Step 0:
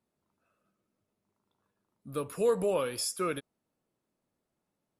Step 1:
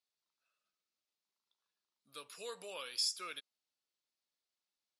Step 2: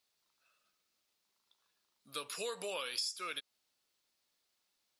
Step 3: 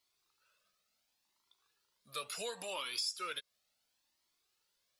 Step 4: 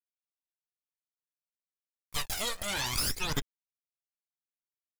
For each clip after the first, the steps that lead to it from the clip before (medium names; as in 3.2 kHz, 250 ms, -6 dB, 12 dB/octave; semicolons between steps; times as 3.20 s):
band-pass filter 4.4 kHz, Q 1.8; trim +4 dB
compression 5:1, threshold -47 dBFS, peak gain reduction 14.5 dB; trim +10.5 dB
in parallel at -10 dB: saturation -35 dBFS, distortion -13 dB; on the sum: Shepard-style flanger rising 0.71 Hz; trim +2.5 dB
Chebyshev shaper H 8 -6 dB, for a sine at -24.5 dBFS; small samples zeroed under -48 dBFS; phaser 0.59 Hz, delay 1.7 ms, feedback 64%